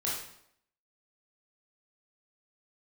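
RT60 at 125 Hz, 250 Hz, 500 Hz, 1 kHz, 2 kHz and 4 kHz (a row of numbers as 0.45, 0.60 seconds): 0.70, 0.75, 0.75, 0.70, 0.65, 0.60 seconds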